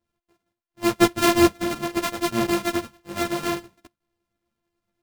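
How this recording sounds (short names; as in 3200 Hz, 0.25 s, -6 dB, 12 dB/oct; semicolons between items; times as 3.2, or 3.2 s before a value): a buzz of ramps at a fixed pitch in blocks of 128 samples; tremolo saw up 9.6 Hz, depth 35%; a shimmering, thickened sound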